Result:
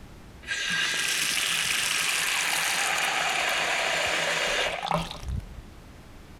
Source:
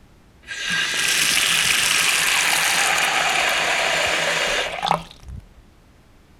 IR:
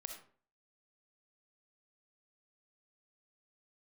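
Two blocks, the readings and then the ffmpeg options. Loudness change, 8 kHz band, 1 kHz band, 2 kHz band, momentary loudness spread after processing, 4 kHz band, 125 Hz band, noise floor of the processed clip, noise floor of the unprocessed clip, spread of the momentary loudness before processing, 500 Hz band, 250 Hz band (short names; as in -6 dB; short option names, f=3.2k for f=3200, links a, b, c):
-7.0 dB, -7.5 dB, -7.0 dB, -6.5 dB, 9 LU, -7.0 dB, -1.0 dB, -47 dBFS, -51 dBFS, 7 LU, -5.5 dB, -4.0 dB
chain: -filter_complex "[0:a]areverse,acompressor=threshold=-29dB:ratio=5,areverse,asplit=2[a][b];[b]adelay=204.1,volume=-18dB,highshelf=f=4k:g=-4.59[c];[a][c]amix=inputs=2:normalize=0,volume=4.5dB"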